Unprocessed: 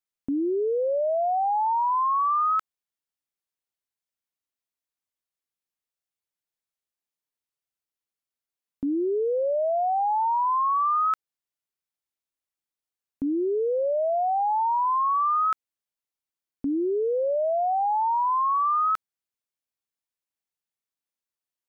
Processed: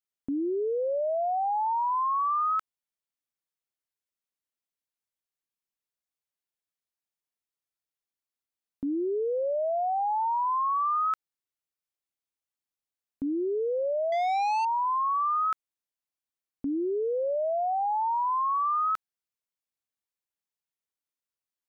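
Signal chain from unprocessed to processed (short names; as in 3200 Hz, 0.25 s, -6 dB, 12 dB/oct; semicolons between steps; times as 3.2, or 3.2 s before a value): 14.12–14.65 sample leveller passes 2; gain -3.5 dB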